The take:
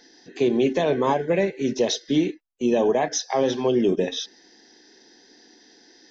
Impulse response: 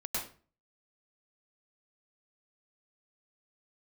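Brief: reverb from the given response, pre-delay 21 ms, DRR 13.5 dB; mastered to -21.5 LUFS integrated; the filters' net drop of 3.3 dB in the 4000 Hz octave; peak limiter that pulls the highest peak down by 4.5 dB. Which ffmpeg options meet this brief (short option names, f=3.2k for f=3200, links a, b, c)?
-filter_complex "[0:a]equalizer=f=4k:t=o:g=-4,alimiter=limit=-15.5dB:level=0:latency=1,asplit=2[a][b];[1:a]atrim=start_sample=2205,adelay=21[c];[b][c]afir=irnorm=-1:irlink=0,volume=-17dB[d];[a][d]amix=inputs=2:normalize=0,volume=4dB"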